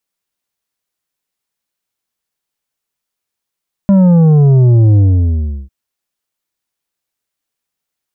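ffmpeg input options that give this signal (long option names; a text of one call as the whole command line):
ffmpeg -f lavfi -i "aevalsrc='0.531*clip((1.8-t)/0.72,0,1)*tanh(2.37*sin(2*PI*200*1.8/log(65/200)*(exp(log(65/200)*t/1.8)-1)))/tanh(2.37)':duration=1.8:sample_rate=44100" out.wav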